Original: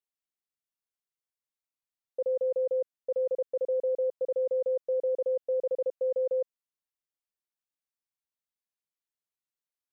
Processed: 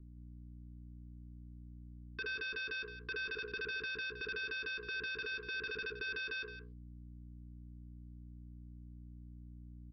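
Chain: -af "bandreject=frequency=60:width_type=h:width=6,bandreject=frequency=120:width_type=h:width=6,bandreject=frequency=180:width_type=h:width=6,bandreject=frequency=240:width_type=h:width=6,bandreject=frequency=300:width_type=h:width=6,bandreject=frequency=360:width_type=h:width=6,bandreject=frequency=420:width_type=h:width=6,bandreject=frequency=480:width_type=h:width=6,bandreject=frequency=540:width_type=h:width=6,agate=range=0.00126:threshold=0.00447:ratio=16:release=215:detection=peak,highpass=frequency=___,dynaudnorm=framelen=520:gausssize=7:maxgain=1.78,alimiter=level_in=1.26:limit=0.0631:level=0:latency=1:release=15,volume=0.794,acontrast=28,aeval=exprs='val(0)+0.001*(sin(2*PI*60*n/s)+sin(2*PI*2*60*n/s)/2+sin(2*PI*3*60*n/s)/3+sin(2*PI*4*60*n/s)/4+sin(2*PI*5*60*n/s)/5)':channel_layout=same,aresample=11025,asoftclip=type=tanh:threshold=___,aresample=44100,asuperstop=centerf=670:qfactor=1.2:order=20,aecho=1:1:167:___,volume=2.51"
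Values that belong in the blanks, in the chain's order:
190, 0.0141, 0.251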